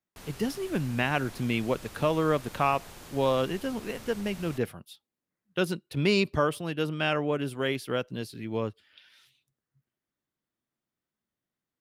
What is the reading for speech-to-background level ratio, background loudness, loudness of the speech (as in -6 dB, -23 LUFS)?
17.0 dB, -46.5 LUFS, -29.5 LUFS